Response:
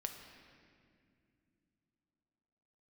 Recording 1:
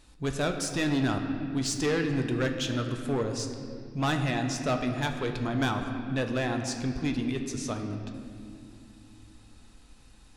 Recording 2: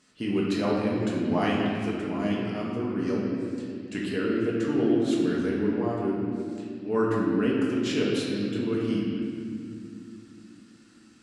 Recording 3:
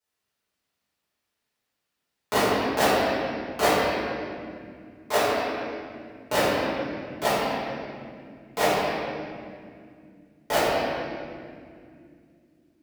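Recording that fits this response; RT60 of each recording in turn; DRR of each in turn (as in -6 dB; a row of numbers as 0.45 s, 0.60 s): 1; no single decay rate, 2.3 s, 2.3 s; 4.5 dB, -5.0 dB, -13.5 dB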